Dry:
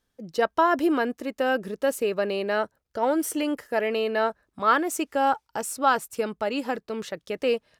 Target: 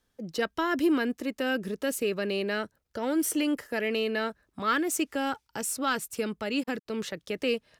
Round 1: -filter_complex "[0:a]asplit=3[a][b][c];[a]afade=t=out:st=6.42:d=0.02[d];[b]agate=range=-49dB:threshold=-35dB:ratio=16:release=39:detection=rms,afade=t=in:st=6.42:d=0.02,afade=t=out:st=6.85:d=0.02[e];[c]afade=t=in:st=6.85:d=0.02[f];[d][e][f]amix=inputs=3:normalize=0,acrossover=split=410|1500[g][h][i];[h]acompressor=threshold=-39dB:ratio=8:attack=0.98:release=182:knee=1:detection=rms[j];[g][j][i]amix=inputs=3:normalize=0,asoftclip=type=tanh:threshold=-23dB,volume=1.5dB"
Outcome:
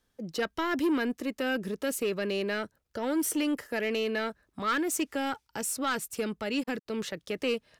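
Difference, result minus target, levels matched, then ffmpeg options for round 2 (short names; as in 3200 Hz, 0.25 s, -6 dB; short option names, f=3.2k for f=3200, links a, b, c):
soft clip: distortion +14 dB
-filter_complex "[0:a]asplit=3[a][b][c];[a]afade=t=out:st=6.42:d=0.02[d];[b]agate=range=-49dB:threshold=-35dB:ratio=16:release=39:detection=rms,afade=t=in:st=6.42:d=0.02,afade=t=out:st=6.85:d=0.02[e];[c]afade=t=in:st=6.85:d=0.02[f];[d][e][f]amix=inputs=3:normalize=0,acrossover=split=410|1500[g][h][i];[h]acompressor=threshold=-39dB:ratio=8:attack=0.98:release=182:knee=1:detection=rms[j];[g][j][i]amix=inputs=3:normalize=0,asoftclip=type=tanh:threshold=-14dB,volume=1.5dB"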